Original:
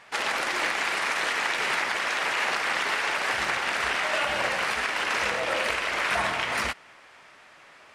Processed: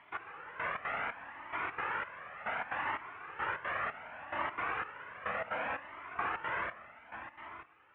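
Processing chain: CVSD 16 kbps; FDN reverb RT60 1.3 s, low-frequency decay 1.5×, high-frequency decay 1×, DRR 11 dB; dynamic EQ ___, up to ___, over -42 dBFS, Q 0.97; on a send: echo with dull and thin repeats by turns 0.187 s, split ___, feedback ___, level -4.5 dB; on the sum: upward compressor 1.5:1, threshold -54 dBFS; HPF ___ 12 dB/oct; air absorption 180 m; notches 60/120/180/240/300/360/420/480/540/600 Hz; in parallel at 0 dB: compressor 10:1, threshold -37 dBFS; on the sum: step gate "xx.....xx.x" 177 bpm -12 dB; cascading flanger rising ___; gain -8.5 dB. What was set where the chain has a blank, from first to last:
1200 Hz, +7 dB, 1900 Hz, 70%, 74 Hz, 0.67 Hz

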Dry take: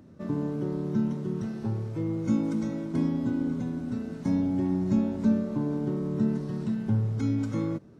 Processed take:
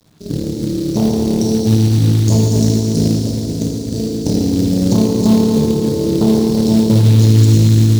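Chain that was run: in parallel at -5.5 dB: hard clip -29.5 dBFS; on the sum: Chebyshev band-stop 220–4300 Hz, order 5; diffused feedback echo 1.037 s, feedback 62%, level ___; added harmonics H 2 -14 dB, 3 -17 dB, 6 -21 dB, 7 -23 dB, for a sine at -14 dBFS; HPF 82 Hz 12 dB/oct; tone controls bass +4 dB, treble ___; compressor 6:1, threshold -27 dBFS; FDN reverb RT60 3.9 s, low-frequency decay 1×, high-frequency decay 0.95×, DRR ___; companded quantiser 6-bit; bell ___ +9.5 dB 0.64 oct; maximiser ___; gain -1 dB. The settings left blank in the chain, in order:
-15.5 dB, +11 dB, -4 dB, 3800 Hz, +15 dB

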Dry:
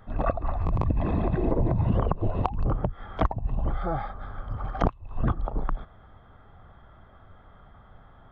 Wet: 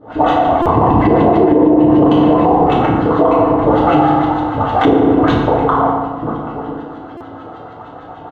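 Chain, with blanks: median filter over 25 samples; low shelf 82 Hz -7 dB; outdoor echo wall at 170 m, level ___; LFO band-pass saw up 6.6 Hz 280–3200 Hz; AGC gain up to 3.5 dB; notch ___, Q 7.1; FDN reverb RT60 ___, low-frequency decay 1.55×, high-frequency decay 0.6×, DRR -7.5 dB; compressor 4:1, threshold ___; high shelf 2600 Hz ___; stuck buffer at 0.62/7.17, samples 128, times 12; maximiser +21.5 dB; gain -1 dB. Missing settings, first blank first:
-12 dB, 2400 Hz, 1.3 s, -25 dBFS, -3 dB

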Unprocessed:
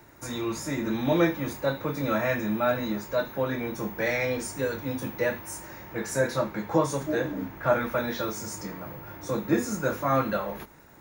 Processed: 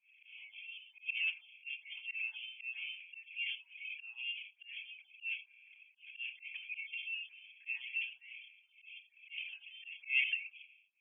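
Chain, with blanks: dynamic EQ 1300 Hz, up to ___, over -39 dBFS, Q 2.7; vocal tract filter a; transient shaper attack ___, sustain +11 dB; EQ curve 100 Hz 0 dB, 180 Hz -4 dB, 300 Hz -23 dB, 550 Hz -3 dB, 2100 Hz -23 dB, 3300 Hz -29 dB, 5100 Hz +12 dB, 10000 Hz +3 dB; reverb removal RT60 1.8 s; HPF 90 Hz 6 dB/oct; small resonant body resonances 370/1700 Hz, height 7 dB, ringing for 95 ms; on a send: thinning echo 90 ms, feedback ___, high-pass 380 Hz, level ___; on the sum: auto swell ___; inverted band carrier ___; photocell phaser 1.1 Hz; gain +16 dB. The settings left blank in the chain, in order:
+3 dB, -2 dB, 45%, -16.5 dB, 0.158 s, 3300 Hz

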